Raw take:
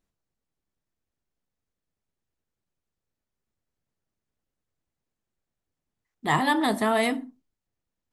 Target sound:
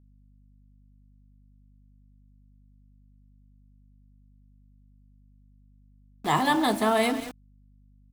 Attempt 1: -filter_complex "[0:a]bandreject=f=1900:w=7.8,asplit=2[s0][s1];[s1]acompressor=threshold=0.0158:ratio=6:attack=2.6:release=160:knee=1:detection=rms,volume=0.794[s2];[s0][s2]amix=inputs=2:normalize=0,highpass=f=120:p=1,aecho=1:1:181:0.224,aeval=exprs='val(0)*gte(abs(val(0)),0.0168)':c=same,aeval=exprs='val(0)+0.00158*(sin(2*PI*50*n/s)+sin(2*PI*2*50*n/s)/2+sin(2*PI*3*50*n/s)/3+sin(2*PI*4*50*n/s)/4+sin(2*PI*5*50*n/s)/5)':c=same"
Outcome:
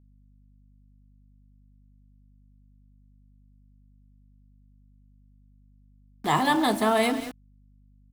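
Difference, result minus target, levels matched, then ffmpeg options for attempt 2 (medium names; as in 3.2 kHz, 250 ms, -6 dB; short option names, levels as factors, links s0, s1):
compression: peak gain reduction -8.5 dB
-filter_complex "[0:a]bandreject=f=1900:w=7.8,asplit=2[s0][s1];[s1]acompressor=threshold=0.00501:ratio=6:attack=2.6:release=160:knee=1:detection=rms,volume=0.794[s2];[s0][s2]amix=inputs=2:normalize=0,highpass=f=120:p=1,aecho=1:1:181:0.224,aeval=exprs='val(0)*gte(abs(val(0)),0.0168)':c=same,aeval=exprs='val(0)+0.00158*(sin(2*PI*50*n/s)+sin(2*PI*2*50*n/s)/2+sin(2*PI*3*50*n/s)/3+sin(2*PI*4*50*n/s)/4+sin(2*PI*5*50*n/s)/5)':c=same"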